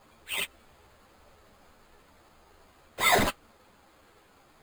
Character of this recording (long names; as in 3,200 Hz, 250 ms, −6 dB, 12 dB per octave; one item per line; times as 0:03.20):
aliases and images of a low sample rate 5,700 Hz, jitter 0%
a shimmering, thickened sound